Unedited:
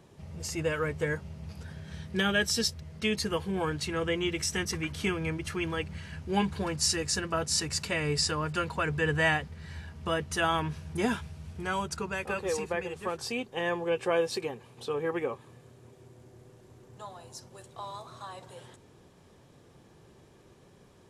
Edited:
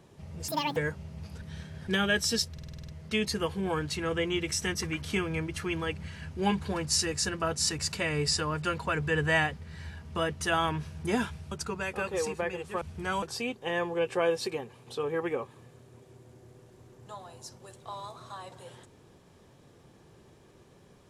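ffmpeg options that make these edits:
-filter_complex "[0:a]asplit=15[a][b][c][d][e][f][g][h][i][j][k][l][m][n][o];[a]atrim=end=0.484[p];[b]atrim=start=0.48:end=1.02,asetpts=PTS-STARTPTS,asetrate=83790,aresample=44100[q];[c]atrim=start=1.016:end=1.672[r];[d]atrim=start=1.668:end=2.132,asetpts=PTS-STARTPTS,areverse[s];[e]atrim=start=2.128:end=2.842[t];[f]atrim=start=2.788:end=2.842[u];[g]atrim=start=2.788:end=2.842[v];[h]atrim=start=2.788:end=2.842[w];[i]atrim=start=2.788:end=2.842[x];[j]atrim=start=2.788:end=2.842[y];[k]atrim=start=2.788:end=2.842[z];[l]atrim=start=2.788:end=11.422[aa];[m]atrim=start=11.828:end=13.132[ab];[n]atrim=start=11.418:end=11.832[ac];[o]atrim=start=13.128[ad];[p][q]acrossfade=d=0.004:c1=hsin:c2=hsin[ae];[ae][r]acrossfade=d=0.004:c1=hsin:c2=hsin[af];[af][s]acrossfade=d=0.004:c1=hsin:c2=hsin[ag];[ag][t]acrossfade=d=0.004:c1=hsin:c2=hsin[ah];[ah][u]acrossfade=d=0.004:c1=hsin:c2=hsin[ai];[ai][v]acrossfade=d=0.004:c1=hsin:c2=hsin[aj];[aj][w]acrossfade=d=0.004:c1=hsin:c2=hsin[ak];[ak][x]acrossfade=d=0.004:c1=hsin:c2=hsin[al];[al][y]acrossfade=d=0.004:c1=hsin:c2=hsin[am];[am][z]acrossfade=d=0.004:c1=hsin:c2=hsin[an];[an][aa]acrossfade=d=0.004:c1=hsin:c2=hsin[ao];[ao][ab]acrossfade=d=0.004:c1=hsin:c2=hsin[ap];[ap][ac]acrossfade=d=0.004:c1=hsin:c2=hsin[aq];[aq][ad]acrossfade=d=0.004:c1=hsin:c2=hsin"

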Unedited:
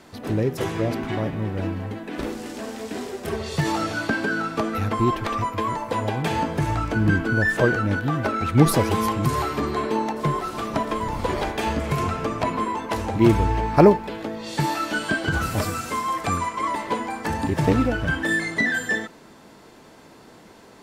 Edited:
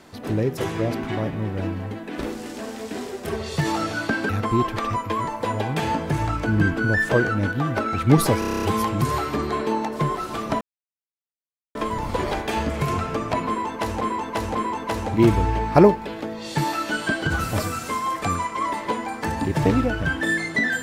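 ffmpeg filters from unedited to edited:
-filter_complex "[0:a]asplit=13[a][b][c][d][e][f][g][h][i][j][k][l][m];[a]atrim=end=4.292[n];[b]atrim=start=4.768:end=8.902[o];[c]atrim=start=8.868:end=8.902[p];[d]atrim=start=8.868:end=8.902[q];[e]atrim=start=8.868:end=8.902[r];[f]atrim=start=8.868:end=8.902[s];[g]atrim=start=8.868:end=8.902[t];[h]atrim=start=8.868:end=8.902[u];[i]atrim=start=8.868:end=8.902[v];[j]atrim=start=8.868:end=10.85,asetpts=PTS-STARTPTS,afade=t=out:st=1.978:d=0.004:c=hsin,apad=pad_dur=1.14[w];[k]atrim=start=10.85:end=13.112,asetpts=PTS-STARTPTS,afade=t=in:d=0.004:c=hsin[x];[l]atrim=start=12.568:end=13.112[y];[m]atrim=start=12.568[z];[n][o]acrossfade=d=0.004:c1=hsin:c2=hsin[aa];[aa][p]acrossfade=d=0.004:c1=hsin:c2=hsin[ab];[ab][q]acrossfade=d=0.004:c1=hsin:c2=hsin[ac];[ac][r]acrossfade=d=0.004:c1=hsin:c2=hsin[ad];[ad][s]acrossfade=d=0.004:c1=hsin:c2=hsin[ae];[ae][t]acrossfade=d=0.004:c1=hsin:c2=hsin[af];[af][u]acrossfade=d=0.004:c1=hsin:c2=hsin[ag];[ag][v]acrossfade=d=0.004:c1=hsin:c2=hsin[ah];[w][x]concat=n=2:v=0:a=1[ai];[ah][ai]acrossfade=d=0.004:c1=hsin:c2=hsin[aj];[aj][y]acrossfade=d=0.004:c1=hsin:c2=hsin[ak];[ak][z]acrossfade=d=0.004:c1=hsin:c2=hsin"

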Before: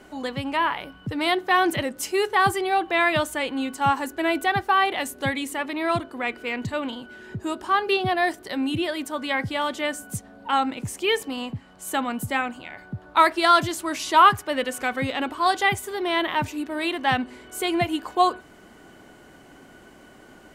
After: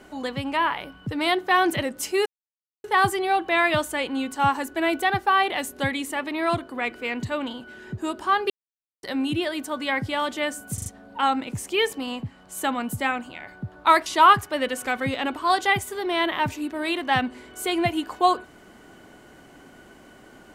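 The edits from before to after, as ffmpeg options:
-filter_complex "[0:a]asplit=8[a][b][c][d][e][f][g][h];[a]atrim=end=2.26,asetpts=PTS-STARTPTS,afade=t=out:st=2.256:d=0.004:c=hsin,apad=pad_dur=0.58[i];[b]atrim=start=2.26:end=7.92,asetpts=PTS-STARTPTS,afade=t=in:d=0.004:c=hsin,afade=t=out:st=5.656:d=0.004:c=hsin[j];[c]atrim=start=7.92:end=8.45,asetpts=PTS-STARTPTS,volume=0[k];[d]atrim=start=8.45:end=10.202,asetpts=PTS-STARTPTS,afade=t=in:d=0.004:c=hsin[l];[e]atrim=start=10.158:end=10.202[m];[f]atrim=start=10.158:end=10.202[n];[g]atrim=start=10.158:end=13.362[o];[h]atrim=start=14.018[p];[i][j][k][l]concat=n=4:v=0:a=1[q];[q][m]acrossfade=d=0.004:c1=hsin:c2=hsin[r];[r][n]acrossfade=d=0.004:c1=hsin:c2=hsin[s];[s][o]acrossfade=d=0.004:c1=hsin:c2=hsin[t];[t][p]acrossfade=d=0.004:c1=hsin:c2=hsin"

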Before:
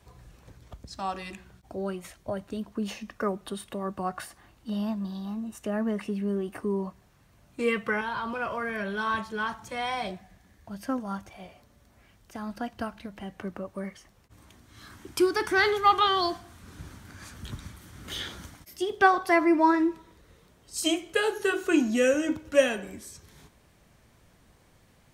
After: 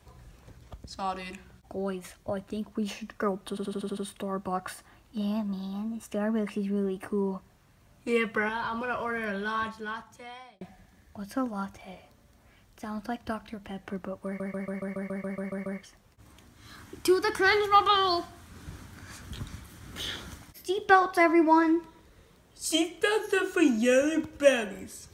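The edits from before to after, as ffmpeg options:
-filter_complex "[0:a]asplit=18[a][b][c][d][e][f][g][h][i][j][k][l][m][n][o][p][q][r];[a]atrim=end=3.572[s];[b]atrim=start=3.488:end=3.572[t];[c]atrim=start=3.488:end=3.572[u];[d]atrim=start=3.488:end=3.572[v];[e]atrim=start=3.488:end=3.572[w];[f]atrim=start=3.488:end=3.572[x];[g]atrim=start=3.488:end=10.13,asetpts=PTS-STARTPTS,afade=t=out:st=5.322:d=1.32[y];[h]atrim=start=10.13:end=13.922,asetpts=PTS-STARTPTS,afade=t=in:d=0.004:c=hsin[z];[i]atrim=start=13.778:end=13.922[aa];[j]atrim=start=13.778:end=13.922[ab];[k]atrim=start=13.778:end=13.922[ac];[l]atrim=start=13.778:end=13.922[ad];[m]atrim=start=13.778:end=13.922[ae];[n]atrim=start=13.778:end=13.922[af];[o]atrim=start=13.778:end=13.922[ag];[p]atrim=start=13.778:end=13.922[ah];[q]atrim=start=13.778:end=13.922[ai];[r]atrim=start=13.778[aj];[s][t]acrossfade=d=0.004:c1=hsin:c2=hsin[ak];[ak][u]acrossfade=d=0.004:c1=hsin:c2=hsin[al];[al][v]acrossfade=d=0.004:c1=hsin:c2=hsin[am];[am][w]acrossfade=d=0.004:c1=hsin:c2=hsin[an];[an][x]acrossfade=d=0.004:c1=hsin:c2=hsin[ao];[y][z]concat=n=2:v=0:a=1[ap];[ao][ap]acrossfade=d=0.004:c1=hsin:c2=hsin[aq];[aq][aa]acrossfade=d=0.004:c1=hsin:c2=hsin[ar];[ar][ab]acrossfade=d=0.004:c1=hsin:c2=hsin[as];[as][ac]acrossfade=d=0.004:c1=hsin:c2=hsin[at];[at][ad]acrossfade=d=0.004:c1=hsin:c2=hsin[au];[au][ae]acrossfade=d=0.004:c1=hsin:c2=hsin[av];[av][af]acrossfade=d=0.004:c1=hsin:c2=hsin[aw];[aw][ag]acrossfade=d=0.004:c1=hsin:c2=hsin[ax];[ax][ah]acrossfade=d=0.004:c1=hsin:c2=hsin[ay];[ay][ai]acrossfade=d=0.004:c1=hsin:c2=hsin[az];[az][aj]acrossfade=d=0.004:c1=hsin:c2=hsin"

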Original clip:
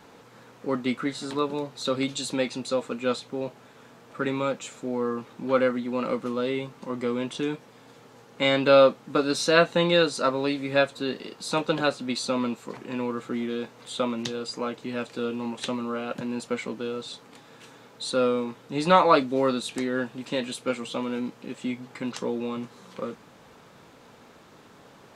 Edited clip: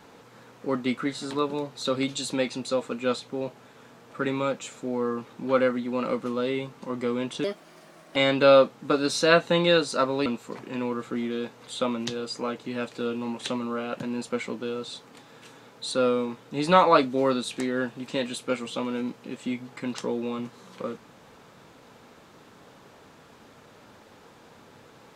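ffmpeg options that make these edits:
-filter_complex "[0:a]asplit=4[a][b][c][d];[a]atrim=end=7.444[e];[b]atrim=start=7.44:end=8.41,asetpts=PTS-STARTPTS,asetrate=59535,aresample=44100[f];[c]atrim=start=8.406:end=10.512[g];[d]atrim=start=12.438[h];[e][f]acrossfade=d=0.004:c1=hsin:c2=hsin[i];[i][g]acrossfade=d=0.004:c1=hsin:c2=hsin[j];[j][h]acrossfade=d=0.004:c1=hsin:c2=hsin"

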